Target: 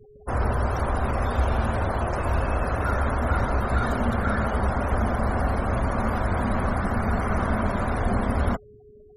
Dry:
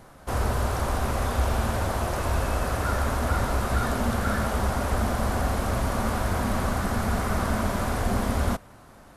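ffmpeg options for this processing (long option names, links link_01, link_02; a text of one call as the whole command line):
ffmpeg -i in.wav -af "aeval=exprs='val(0)+0.00316*sin(2*PI*420*n/s)':channel_layout=same,afftfilt=real='re*gte(hypot(re,im),0.0158)':imag='im*gte(hypot(re,im),0.0158)':win_size=1024:overlap=0.75,volume=1.5dB" out.wav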